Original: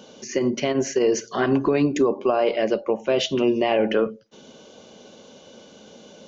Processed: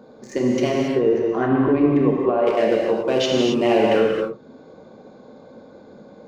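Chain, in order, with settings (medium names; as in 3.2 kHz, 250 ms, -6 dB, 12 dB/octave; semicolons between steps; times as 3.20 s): local Wiener filter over 15 samples; 0.80–2.47 s: distance through air 490 m; gated-style reverb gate 300 ms flat, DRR -2.5 dB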